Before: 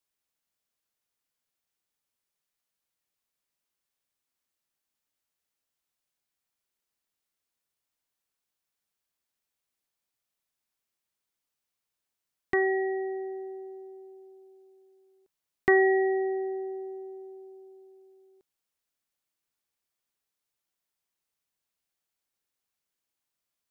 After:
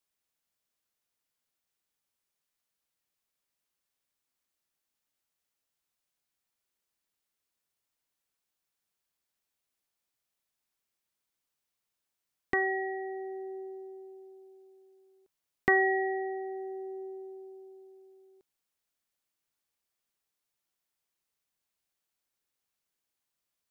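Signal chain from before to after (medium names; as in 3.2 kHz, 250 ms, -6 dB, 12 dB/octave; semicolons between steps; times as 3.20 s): dynamic bell 370 Hz, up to -7 dB, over -38 dBFS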